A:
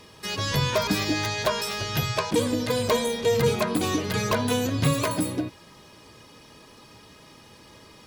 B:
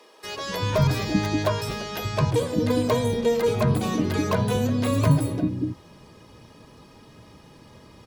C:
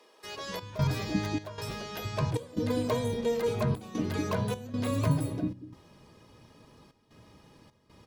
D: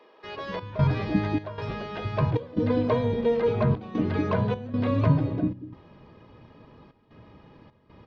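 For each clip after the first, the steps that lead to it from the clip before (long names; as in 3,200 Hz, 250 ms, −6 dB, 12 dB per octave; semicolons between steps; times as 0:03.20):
tilt shelving filter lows +5.5 dB, about 910 Hz; multiband delay without the direct sound highs, lows 240 ms, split 360 Hz
flanger 0.31 Hz, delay 7.6 ms, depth 3.4 ms, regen −88%; gate pattern "xxx.xxx.xxxx.xxx" 76 BPM −12 dB; level −2.5 dB
Gaussian smoothing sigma 2.6 samples; level +5.5 dB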